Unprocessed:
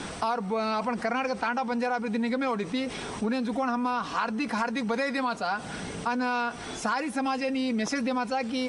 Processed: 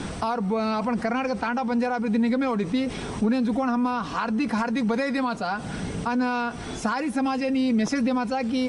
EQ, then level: bass shelf 290 Hz +10.5 dB; 0.0 dB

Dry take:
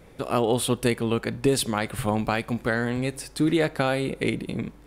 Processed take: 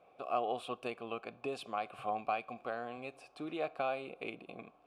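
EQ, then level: dynamic bell 740 Hz, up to -4 dB, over -36 dBFS, Q 1.3; vowel filter a; +1.5 dB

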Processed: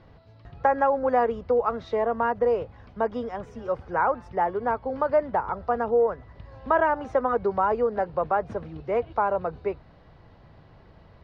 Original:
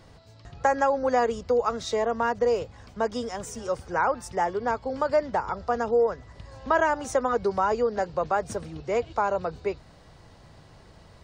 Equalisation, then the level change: dynamic bell 5.2 kHz, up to -5 dB, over -49 dBFS, Q 0.91; dynamic bell 910 Hz, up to +3 dB, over -36 dBFS, Q 0.74; distance through air 300 m; 0.0 dB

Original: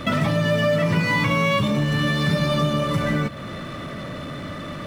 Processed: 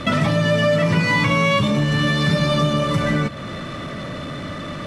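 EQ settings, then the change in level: low-pass 8.6 kHz 12 dB/octave; treble shelf 5.5 kHz +4.5 dB; +2.5 dB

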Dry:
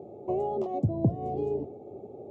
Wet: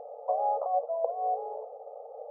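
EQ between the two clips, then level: brick-wall FIR band-pass 450–1400 Hz; +7.0 dB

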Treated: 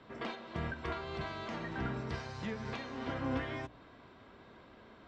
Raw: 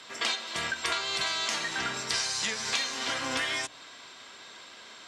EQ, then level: tape spacing loss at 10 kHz 21 dB; tilt EQ -4.5 dB/octave; -4.5 dB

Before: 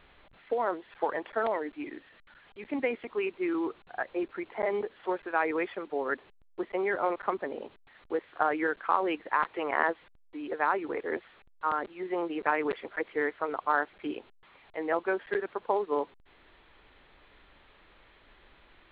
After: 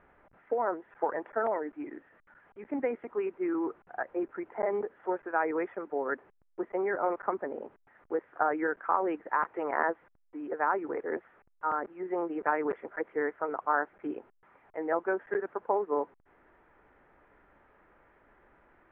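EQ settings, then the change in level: low-pass 1.7 kHz 24 dB/octave; bass shelf 81 Hz -10 dB; band-stop 1.1 kHz, Q 15; 0.0 dB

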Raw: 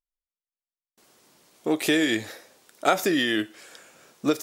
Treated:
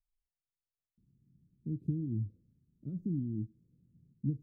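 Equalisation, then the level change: inverse Chebyshev low-pass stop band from 700 Hz, stop band 70 dB; +9.0 dB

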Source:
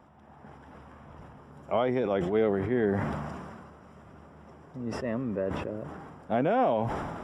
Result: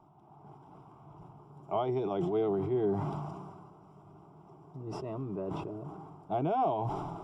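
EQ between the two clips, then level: treble shelf 2 kHz -10 dB; dynamic bell 4.1 kHz, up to +5 dB, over -53 dBFS, Q 0.82; static phaser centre 350 Hz, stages 8; 0.0 dB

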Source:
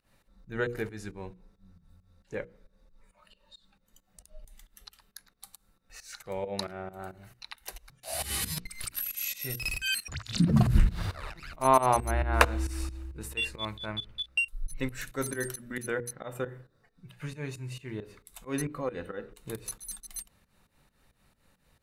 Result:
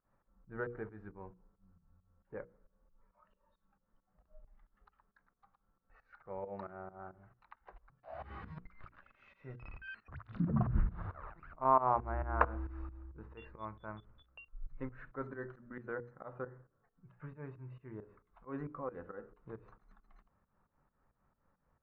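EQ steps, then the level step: four-pole ladder low-pass 1.5 kHz, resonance 40%; -1.5 dB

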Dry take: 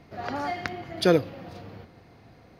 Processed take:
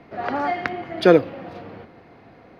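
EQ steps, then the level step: three-band isolator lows -13 dB, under 200 Hz, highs -15 dB, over 3.2 kHz; bass shelf 120 Hz +4.5 dB; +7.0 dB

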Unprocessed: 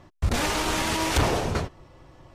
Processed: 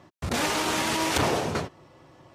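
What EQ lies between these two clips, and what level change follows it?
high-pass 130 Hz 12 dB/octave; 0.0 dB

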